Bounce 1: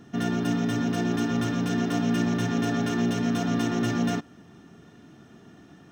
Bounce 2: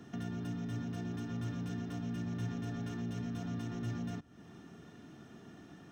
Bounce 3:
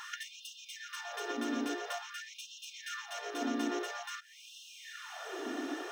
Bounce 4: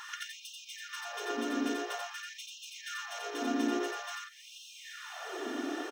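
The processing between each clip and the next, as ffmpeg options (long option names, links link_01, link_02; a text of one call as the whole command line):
ffmpeg -i in.wav -filter_complex "[0:a]acrossover=split=130[link_01][link_02];[link_02]acompressor=threshold=-40dB:ratio=6[link_03];[link_01][link_03]amix=inputs=2:normalize=0,volume=-3dB" out.wav
ffmpeg -i in.wav -af "acompressor=threshold=-43dB:ratio=4,afftfilt=real='re*gte(b*sr/1024,230*pow(2600/230,0.5+0.5*sin(2*PI*0.49*pts/sr)))':imag='im*gte(b*sr/1024,230*pow(2600/230,0.5+0.5*sin(2*PI*0.49*pts/sr)))':win_size=1024:overlap=0.75,volume=18dB" out.wav
ffmpeg -i in.wav -af "aecho=1:1:87:0.708" out.wav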